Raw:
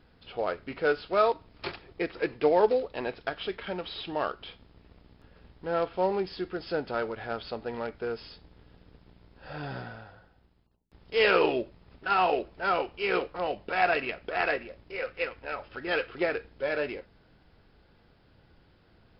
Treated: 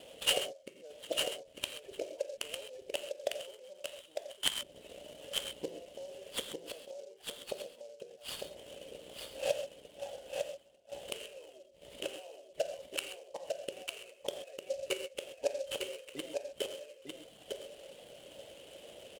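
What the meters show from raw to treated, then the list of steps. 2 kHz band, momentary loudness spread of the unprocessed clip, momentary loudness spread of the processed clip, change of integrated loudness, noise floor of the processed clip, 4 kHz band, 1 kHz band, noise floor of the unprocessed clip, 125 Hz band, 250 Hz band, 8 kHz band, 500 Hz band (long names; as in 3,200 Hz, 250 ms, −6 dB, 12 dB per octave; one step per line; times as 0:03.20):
−13.5 dB, 15 LU, 17 LU, −10.0 dB, −60 dBFS, +2.0 dB, −20.0 dB, −62 dBFS, −17.0 dB, −15.5 dB, can't be measured, −10.5 dB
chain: reverb reduction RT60 0.73 s
in parallel at −2 dB: downward compressor 16 to 1, threshold −38 dBFS, peak gain reduction 21 dB
on the sum: brickwall limiter −17.5 dBFS, peak gain reduction 7.5 dB
gate with flip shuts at −29 dBFS, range −34 dB
pair of resonant band-passes 1,300 Hz, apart 2.4 octaves
tape wow and flutter 25 cents
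on a send: single-tap delay 902 ms −4.5 dB
on the sum: reverb whose tail is shaped and stops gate 160 ms flat, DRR 6 dB
short delay modulated by noise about 5,200 Hz, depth 0.032 ms
level +18 dB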